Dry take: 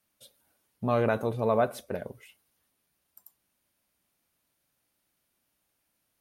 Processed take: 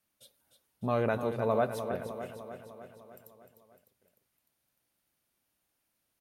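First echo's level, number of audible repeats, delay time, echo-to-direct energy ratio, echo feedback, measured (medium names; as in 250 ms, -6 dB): -9.0 dB, 6, 302 ms, -7.0 dB, 60%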